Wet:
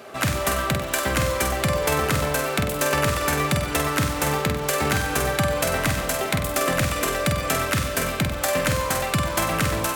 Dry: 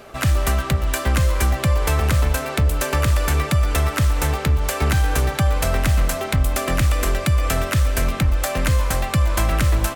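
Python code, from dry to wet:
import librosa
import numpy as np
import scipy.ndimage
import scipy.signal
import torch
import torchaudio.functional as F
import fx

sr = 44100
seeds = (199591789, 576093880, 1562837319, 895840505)

p1 = scipy.signal.sosfilt(scipy.signal.butter(2, 150.0, 'highpass', fs=sr, output='sos'), x)
y = p1 + fx.room_flutter(p1, sr, wall_m=8.2, rt60_s=0.5, dry=0)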